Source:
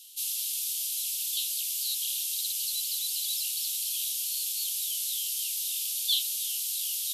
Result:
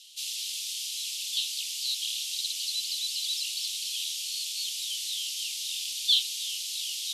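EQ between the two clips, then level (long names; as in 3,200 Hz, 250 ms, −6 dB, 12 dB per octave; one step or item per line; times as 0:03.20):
low-pass filter 5,600 Hz 12 dB per octave
+5.0 dB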